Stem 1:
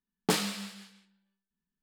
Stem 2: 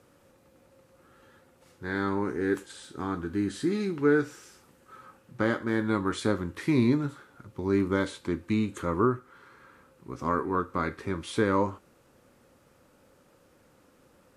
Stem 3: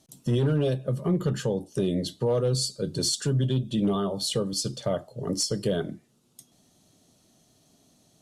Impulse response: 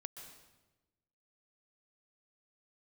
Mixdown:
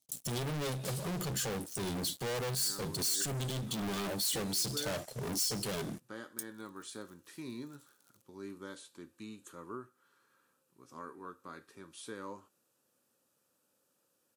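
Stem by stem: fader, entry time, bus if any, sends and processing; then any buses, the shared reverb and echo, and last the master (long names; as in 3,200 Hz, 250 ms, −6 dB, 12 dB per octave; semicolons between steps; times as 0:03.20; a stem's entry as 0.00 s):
−5.0 dB, 0.55 s, no send, automatic ducking −8 dB, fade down 1.30 s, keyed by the third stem
−6.0 dB, 0.70 s, no send, high-pass filter 150 Hz 12 dB per octave; notch filter 2,100 Hz, Q 5.8
−4.5 dB, 0.00 s, no send, leveller curve on the samples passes 5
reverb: not used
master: first-order pre-emphasis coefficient 0.8; brickwall limiter −23.5 dBFS, peak gain reduction 7.5 dB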